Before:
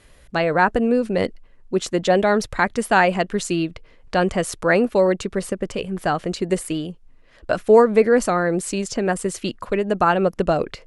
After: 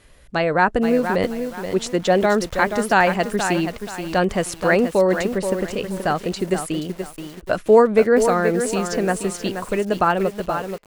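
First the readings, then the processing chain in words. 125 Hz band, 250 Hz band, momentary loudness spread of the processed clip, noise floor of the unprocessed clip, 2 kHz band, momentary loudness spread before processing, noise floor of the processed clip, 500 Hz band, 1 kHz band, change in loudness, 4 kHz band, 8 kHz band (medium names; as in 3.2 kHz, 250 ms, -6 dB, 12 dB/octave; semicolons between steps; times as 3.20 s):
0.0 dB, +0.5 dB, 11 LU, -50 dBFS, +0.5 dB, 10 LU, -43 dBFS, +0.5 dB, +0.5 dB, +0.5 dB, +0.5 dB, +0.5 dB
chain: fade out at the end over 0.87 s; bit-crushed delay 478 ms, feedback 35%, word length 6-bit, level -7.5 dB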